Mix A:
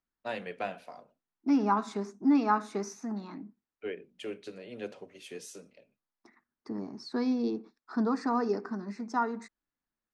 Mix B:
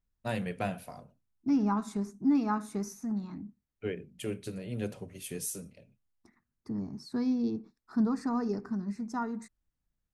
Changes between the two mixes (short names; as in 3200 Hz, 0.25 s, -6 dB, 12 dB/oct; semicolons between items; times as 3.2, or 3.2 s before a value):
second voice -6.5 dB; master: remove three-band isolator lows -23 dB, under 270 Hz, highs -23 dB, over 6100 Hz